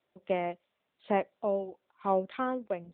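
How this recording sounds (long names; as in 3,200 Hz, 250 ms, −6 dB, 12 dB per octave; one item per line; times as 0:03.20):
tremolo triangle 0.99 Hz, depth 70%
AMR narrowband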